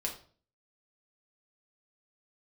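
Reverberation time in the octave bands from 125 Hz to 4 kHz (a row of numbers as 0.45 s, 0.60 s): 0.55 s, 0.55 s, 0.50 s, 0.40 s, 0.35 s, 0.35 s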